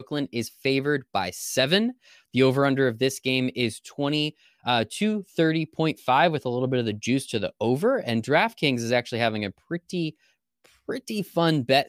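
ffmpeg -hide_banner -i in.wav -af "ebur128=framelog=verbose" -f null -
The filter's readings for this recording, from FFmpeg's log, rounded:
Integrated loudness:
  I:         -24.9 LUFS
  Threshold: -35.1 LUFS
Loudness range:
  LRA:         2.5 LU
  Threshold: -44.8 LUFS
  LRA low:   -26.5 LUFS
  LRA high:  -24.0 LUFS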